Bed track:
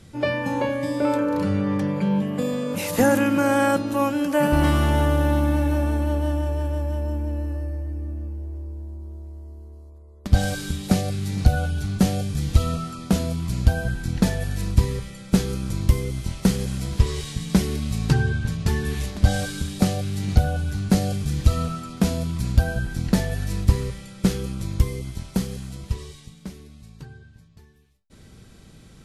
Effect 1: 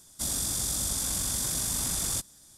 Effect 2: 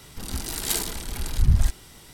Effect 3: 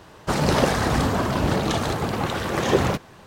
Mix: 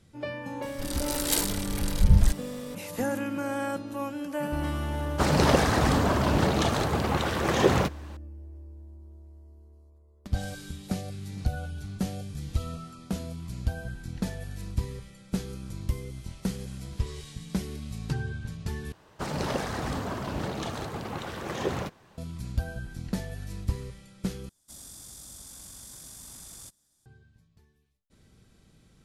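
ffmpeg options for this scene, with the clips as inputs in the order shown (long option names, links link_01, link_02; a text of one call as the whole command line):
ffmpeg -i bed.wav -i cue0.wav -i cue1.wav -i cue2.wav -filter_complex "[3:a]asplit=2[link_01][link_02];[0:a]volume=-11.5dB,asplit=3[link_03][link_04][link_05];[link_03]atrim=end=18.924[link_06];[link_02]atrim=end=3.26,asetpts=PTS-STARTPTS,volume=-10.5dB[link_07];[link_04]atrim=start=22.176:end=24.494[link_08];[1:a]atrim=end=2.57,asetpts=PTS-STARTPTS,volume=-16dB[link_09];[link_05]atrim=start=27.056[link_10];[2:a]atrim=end=2.13,asetpts=PTS-STARTPTS,volume=-0.5dB,afade=type=in:duration=0.004:curve=hsin,afade=type=out:start_time=2.126:duration=0.004:curve=hsin,adelay=620[link_11];[link_01]atrim=end=3.26,asetpts=PTS-STARTPTS,volume=-2dB,afade=type=in:duration=0.004:curve=hsin,afade=type=out:start_time=3.256:duration=0.004:curve=hsin,adelay=4910[link_12];[link_06][link_07]acrossfade=duration=0.004:curve1=hsin:curve2=hsin[link_13];[link_13][link_08]acrossfade=duration=0.004:curve1=hsin:curve2=hsin[link_14];[link_14][link_09]acrossfade=duration=0.004:curve1=hsin:curve2=hsin[link_15];[link_15][link_10]acrossfade=duration=0.004:curve1=hsin:curve2=hsin[link_16];[link_16][link_11][link_12]amix=inputs=3:normalize=0" out.wav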